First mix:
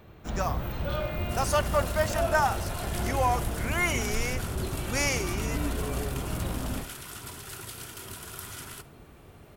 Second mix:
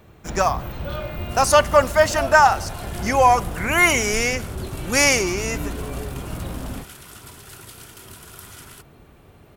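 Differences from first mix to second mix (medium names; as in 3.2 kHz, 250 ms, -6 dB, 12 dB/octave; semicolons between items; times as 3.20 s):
speech +12.0 dB; first sound +4.0 dB; reverb: off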